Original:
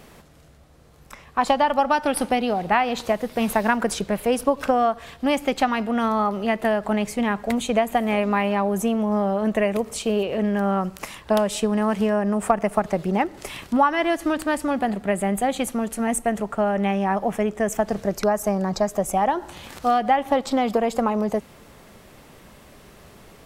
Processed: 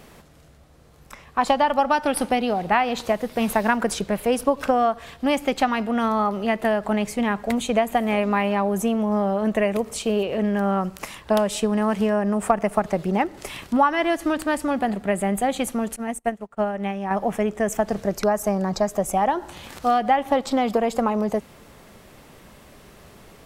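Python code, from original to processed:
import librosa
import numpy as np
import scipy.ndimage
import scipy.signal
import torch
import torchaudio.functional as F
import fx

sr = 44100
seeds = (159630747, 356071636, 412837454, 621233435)

y = fx.upward_expand(x, sr, threshold_db=-38.0, expansion=2.5, at=(15.96, 17.11))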